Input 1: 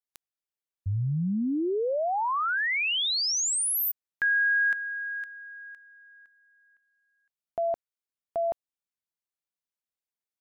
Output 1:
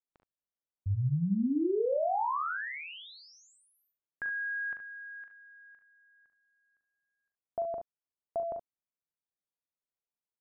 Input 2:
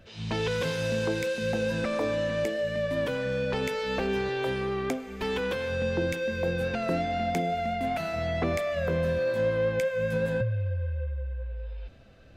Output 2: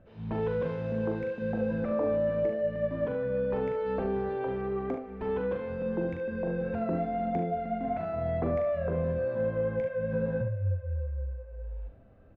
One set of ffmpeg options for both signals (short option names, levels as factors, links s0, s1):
-filter_complex "[0:a]lowpass=1100,asplit=2[s0][s1];[s1]aecho=0:1:41|63|73:0.473|0.224|0.316[s2];[s0][s2]amix=inputs=2:normalize=0,volume=0.708"